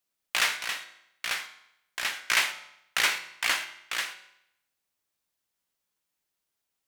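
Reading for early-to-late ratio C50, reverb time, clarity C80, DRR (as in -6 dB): 12.0 dB, 0.75 s, 14.0 dB, 8.0 dB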